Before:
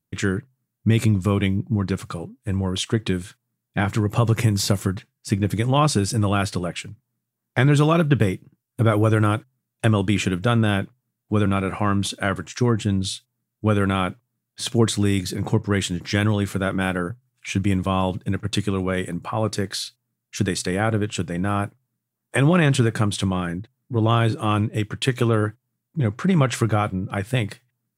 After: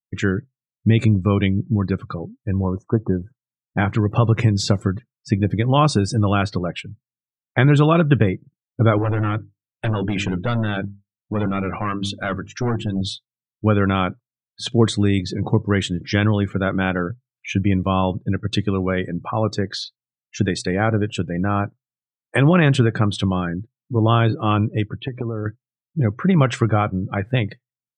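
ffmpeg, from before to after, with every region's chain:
-filter_complex "[0:a]asettb=1/sr,asplit=3[a][b][c];[a]atrim=end=2.644[d];[b]atrim=start=2.64:end=3.78,asetpts=PTS-STARTPTS,afade=t=in:d=0.004:c=qsin,afade=t=out:st=1.136:d=0.004:c=qsin,asuperstop=centerf=3200:order=20:qfactor=0.92,highshelf=f=1.5k:t=q:w=1.5:g=-11.5[e];[c]atrim=start=3.776[f];[d][e]acrossfade=d=0.004:c1=hsin:c2=qsin[g];[g][f]acrossfade=d=0.004:c1=qsin:c2=hsin,asettb=1/sr,asplit=3[h][i][j];[h]atrim=end=8.984[k];[i]atrim=start=8.98:end=13.01,asetpts=PTS-STARTPTS,afade=t=in:d=0.004:c=qsin,afade=t=out:st=4.026:d=0.004:c=qsin,bandreject=f=50:t=h:w=6,bandreject=f=100:t=h:w=6,bandreject=f=150:t=h:w=6,bandreject=f=200:t=h:w=6,bandreject=f=250:t=h:w=6,bandreject=f=300:t=h:w=6,bandreject=f=350:t=h:w=6,bandreject=f=400:t=h:w=6,asoftclip=type=hard:threshold=-19.5dB[l];[j]atrim=start=13.006[m];[k][l]acrossfade=d=0.004:c1=hsin:c2=qsin[n];[n][m]acrossfade=d=0.004:c1=qsin:c2=hsin,asettb=1/sr,asplit=3[o][p][q];[o]atrim=end=24.884[r];[p]atrim=start=24.88:end=25.46,asetpts=PTS-STARTPTS,afade=t=in:d=0.004:c=qsin,afade=t=out:st=0.576:d=0.004:c=qsin,lowpass=f=1.1k:p=1,acompressor=threshold=-22dB:ratio=16:attack=3.2:release=140:knee=1:detection=peak[s];[q]atrim=start=25.456[t];[r][s]acrossfade=d=0.004:c1=hsin:c2=qsin[u];[u][t]acrossfade=d=0.004:c1=qsin:c2=hsin,equalizer=f=11k:t=o:w=1:g=-8.5,afftdn=nr=30:nf=-36,volume=2.5dB"

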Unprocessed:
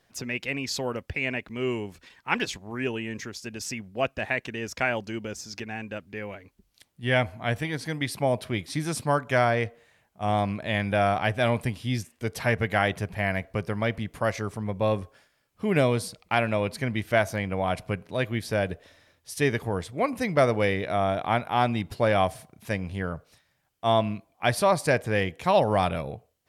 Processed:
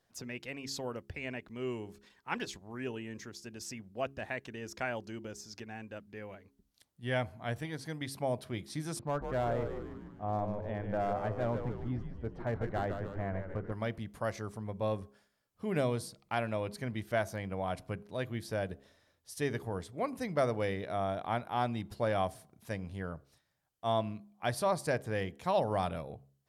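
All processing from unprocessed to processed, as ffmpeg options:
-filter_complex "[0:a]asettb=1/sr,asplit=3[a][b][c];[a]atrim=end=8.994[d];[b]atrim=start=8.99:end=13.72,asetpts=PTS-STARTPTS,afade=t=in:d=0.004:c=qsin,afade=t=out:st=4.726:d=0.004:c=qsin,lowpass=1.2k,asoftclip=type=hard:threshold=-18.5dB,asplit=9[e][f][g][h][i][j][k][l][m];[f]adelay=149,afreqshift=-100,volume=-6.5dB[n];[g]adelay=298,afreqshift=-200,volume=-11.1dB[o];[h]adelay=447,afreqshift=-300,volume=-15.7dB[p];[i]adelay=596,afreqshift=-400,volume=-20.2dB[q];[j]adelay=745,afreqshift=-500,volume=-24.8dB[r];[k]adelay=894,afreqshift=-600,volume=-29.4dB[s];[l]adelay=1043,afreqshift=-700,volume=-34dB[t];[m]adelay=1192,afreqshift=-800,volume=-38.6dB[u];[e][n][o][p][q][r][s][t][u]amix=inputs=9:normalize=0,atrim=end_sample=208593[v];[c]atrim=start=13.716[w];[d][v]acrossfade=d=0.004:c1=hsin:c2=qsin[x];[x][w]acrossfade=d=0.004:c1=qsin:c2=hsin,equalizer=f=2.4k:t=o:w=0.79:g=-5.5,bandreject=f=68.48:t=h:w=4,bandreject=f=136.96:t=h:w=4,bandreject=f=205.44:t=h:w=4,bandreject=f=273.92:t=h:w=4,bandreject=f=342.4:t=h:w=4,bandreject=f=410.88:t=h:w=4,volume=-8.5dB"

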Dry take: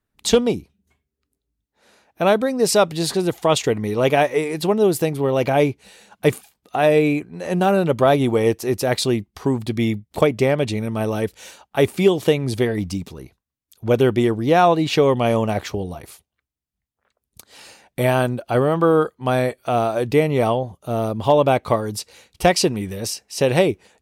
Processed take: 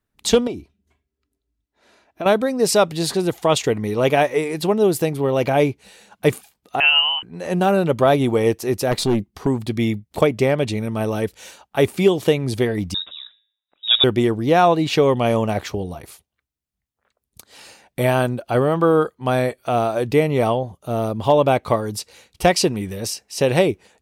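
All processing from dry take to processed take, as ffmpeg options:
-filter_complex "[0:a]asettb=1/sr,asplit=3[a][b][c];[a]atrim=end=0.474[d];[b]atrim=start=0.47:end=2.26,asetpts=PTS-STARTPTS,afade=t=in:d=0.004:c=qsin,afade=t=out:st=1.786:d=0.004:c=qsin,highshelf=f=8.7k:g=-11,aecho=1:1:3:0.4,atrim=end_sample=78939,acompressor=threshold=-26dB:ratio=2.5:attack=3.2:release=140:knee=1:detection=peak[e];[c]atrim=start=2.256[f];[d][e]acrossfade=d=0.004:c1=hsin:c2=qsin[g];[g][f]acrossfade=d=0.004:c1=qsin:c2=hsin,asettb=1/sr,asplit=3[h][i][j];[h]atrim=end=6.804[k];[i]atrim=start=6.8:end=7.23,asetpts=PTS-STARTPTS,afade=t=in:d=0.004:c=qsin,afade=t=out:st=0.426:d=0.004:c=qsin,highpass=280,lowpass=f=2.8k:t=q:w=0.5098,lowpass=f=2.8k:t=q:w=0.6013,lowpass=f=2.8k:t=q:w=0.9,lowpass=f=2.8k:t=q:w=2.563,afreqshift=-3300[l];[j]atrim=start=7.226[m];[k][l]acrossfade=d=0.004:c1=hsin:c2=qsin[n];[n][m]acrossfade=d=0.004:c1=qsin:c2=hsin,asettb=1/sr,asplit=3[o][p][q];[o]atrim=end=8.914[r];[p]atrim=start=8.91:end=9.47,asetpts=PTS-STARTPTS,afade=t=in:d=0.004:c=qsin,afade=t=out:st=0.556:d=0.004:c=qsin,equalizer=f=230:w=0.58:g=6,aeval=exprs='(tanh(3.98*val(0)+0.35)-tanh(0.35))/3.98':c=same[s];[q]atrim=start=9.466[t];[r][s]acrossfade=d=0.004:c1=hsin:c2=qsin[u];[u][t]acrossfade=d=0.004:c1=qsin:c2=hsin,asettb=1/sr,asplit=3[v][w][x];[v]atrim=end=12.944[y];[w]atrim=start=12.94:end=14.04,asetpts=PTS-STARTPTS,afade=t=in:d=0.004:c=qsin,afade=t=out:st=1.096:d=0.004:c=qsin,bandreject=f=107.9:t=h:w=4,bandreject=f=215.8:t=h:w=4,bandreject=f=323.7:t=h:w=4,bandreject=f=431.6:t=h:w=4,bandreject=f=539.5:t=h:w=4,bandreject=f=647.4:t=h:w=4,bandreject=f=755.3:t=h:w=4,bandreject=f=863.2:t=h:w=4,bandreject=f=971.1:t=h:w=4,bandreject=f=1.079k:t=h:w=4,bandreject=f=1.1869k:t=h:w=4,bandreject=f=1.2948k:t=h:w=4,bandreject=f=1.4027k:t=h:w=4,bandreject=f=1.5106k:t=h:w=4,bandreject=f=1.6185k:t=h:w=4,bandreject=f=1.7264k:t=h:w=4,bandreject=f=1.8343k:t=h:w=4,bandreject=f=1.9422k:t=h:w=4,bandreject=f=2.0501k:t=h:w=4,bandreject=f=2.158k:t=h:w=4,bandreject=f=2.2659k:t=h:w=4,lowpass=f=3.3k:t=q:w=0.5098,lowpass=f=3.3k:t=q:w=0.6013,lowpass=f=3.3k:t=q:w=0.9,lowpass=f=3.3k:t=q:w=2.563,afreqshift=-3900[z];[x]atrim=start=14.036[aa];[y][z]acrossfade=d=0.004:c1=hsin:c2=qsin[ab];[ab][aa]acrossfade=d=0.004:c1=qsin:c2=hsin"

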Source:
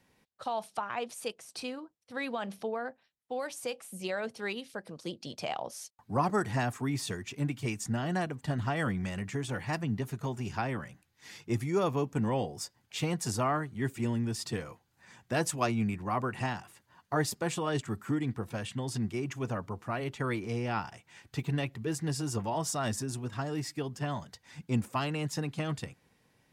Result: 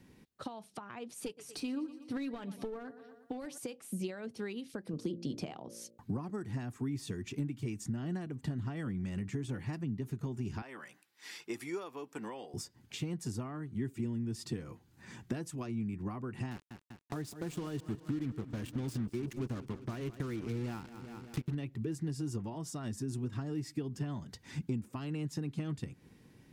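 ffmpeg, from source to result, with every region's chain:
-filter_complex "[0:a]asettb=1/sr,asplit=3[a][b][c];[a]atrim=end=1.254[d];[b]atrim=start=1.25:end=3.58,asetpts=PTS-STARTPTS,afade=t=in:d=0.004:c=qsin,afade=t=out:st=2.326:d=0.004:c=qsin,aecho=1:1:6.9:0.48,atrim=end_sample=102753,aecho=1:1:119|238|357|476:0.119|0.0559|0.0263|0.0123,atrim=end_sample=102753,aeval=exprs='clip(val(0),-1,0.0211)':c=same[e];[c]atrim=start=3.576[f];[d][e]acrossfade=d=0.004:c1=hsin:c2=qsin[g];[g][f]acrossfade=d=0.004:c1=qsin:c2=hsin,asettb=1/sr,asplit=3[h][i][j];[h]atrim=end=4.934[k];[i]atrim=start=4.93:end=5.98,asetpts=PTS-STARTPTS,afade=t=in:d=0.004:c=qsin,afade=t=out:st=1.046:d=0.004:c=qsin,highpass=41,equalizer=f=230:w=0.36:g=5.5,bandreject=f=57.43:t=h:w=4,bandreject=f=114.86:t=h:w=4,bandreject=f=172.29:t=h:w=4,bandreject=f=229.72:t=h:w=4,bandreject=f=287.15:t=h:w=4,bandreject=f=344.58:t=h:w=4,bandreject=f=402.01:t=h:w=4,bandreject=f=459.44:t=h:w=4,bandreject=f=516.87:t=h:w=4,bandreject=f=574.3:t=h:w=4[l];[j]atrim=start=5.976[m];[k][l]acrossfade=d=0.004:c1=hsin:c2=qsin[n];[n][m]acrossfade=d=0.004:c1=qsin:c2=hsin,asettb=1/sr,asplit=3[o][p][q];[o]atrim=end=10.624[r];[p]atrim=start=10.62:end=12.54,asetpts=PTS-STARTPTS,afade=t=in:d=0.004:c=qsin,afade=t=out:st=1.916:d=0.004:c=qsin,highpass=690,bandreject=f=6.5k:w=13[s];[q]atrim=start=12.536[t];[r][s]acrossfade=d=0.004:c1=hsin:c2=qsin[u];[u][t]acrossfade=d=0.004:c1=qsin:c2=hsin,asettb=1/sr,asplit=3[v][w][x];[v]atrim=end=16.514[y];[w]atrim=start=16.51:end=21.55,asetpts=PTS-STARTPTS,afade=t=in:d=0.004:c=qsin,afade=t=out:st=5.036:d=0.004:c=qsin,acrusher=bits=5:mix=0:aa=0.5,aecho=1:1:196|392|588|784|980:0.133|0.0747|0.0418|0.0234|0.0131,atrim=end_sample=222264[z];[x]atrim=start=21.546[aa];[y][z]acrossfade=d=0.004:c1=hsin:c2=qsin[ab];[ab][aa]acrossfade=d=0.004:c1=qsin:c2=hsin,acompressor=threshold=-44dB:ratio=16,lowshelf=f=450:t=q:w=1.5:g=8,volume=2.5dB"

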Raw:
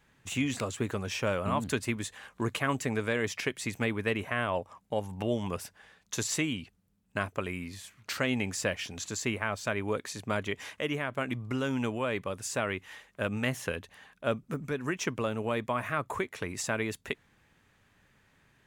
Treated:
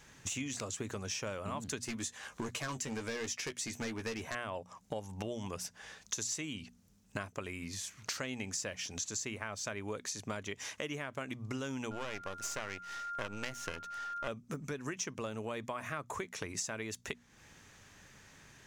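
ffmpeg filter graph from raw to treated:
-filter_complex "[0:a]asettb=1/sr,asplit=3[a][b][c];[a]atrim=end=1.854[d];[b]atrim=start=1.85:end=4.35,asetpts=PTS-STARTPTS,afade=t=in:d=0.004:c=qsin,afade=t=out:st=2.496:d=0.004:c=qsin,asoftclip=type=hard:threshold=-27.5dB,asplit=2[e][f];[f]adelay=13,volume=-7dB[g];[e][g]amix=inputs=2:normalize=0,atrim=end_sample=110250[h];[c]atrim=start=4.346[i];[d][h]acrossfade=d=0.004:c1=hsin:c2=qsin[j];[j][i]acrossfade=d=0.004:c1=qsin:c2=hsin,asettb=1/sr,asplit=3[k][l][m];[k]atrim=end=11.914[n];[l]atrim=start=11.91:end=14.28,asetpts=PTS-STARTPTS,afade=t=in:d=0.004:c=qsin,afade=t=out:st=2.366:d=0.004:c=qsin,aeval=exprs='max(val(0),0)':c=same,aeval=exprs='val(0)+0.00631*sin(2*PI*1400*n/s)':c=same,equalizer=f=1.3k:w=0.35:g=4.5[o];[m]atrim=start=14.276[p];[n][o]acrossfade=d=0.004:c1=hsin:c2=qsin[q];[q][p]acrossfade=d=0.004:c1=qsin:c2=hsin,equalizer=f=6.1k:t=o:w=0.79:g=12,bandreject=f=60:t=h:w=6,bandreject=f=120:t=h:w=6,bandreject=f=180:t=h:w=6,bandreject=f=240:t=h:w=6,acompressor=threshold=-46dB:ratio=4,volume=6.5dB"

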